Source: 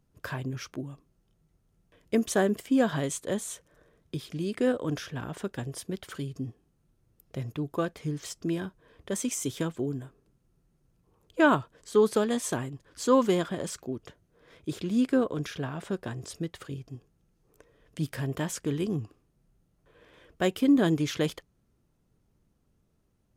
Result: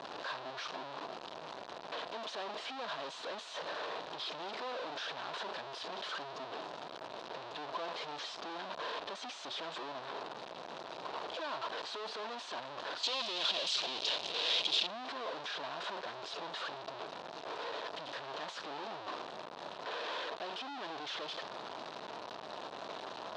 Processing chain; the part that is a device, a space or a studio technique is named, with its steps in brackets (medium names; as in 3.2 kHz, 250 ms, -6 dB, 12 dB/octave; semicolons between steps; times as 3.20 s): home computer beeper (one-bit comparator; cabinet simulation 530–4400 Hz, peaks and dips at 660 Hz +6 dB, 980 Hz +6 dB, 2.1 kHz -6 dB, 3.9 kHz +5 dB); 13.03–14.87 s: resonant high shelf 2.2 kHz +11 dB, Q 1.5; trim -7.5 dB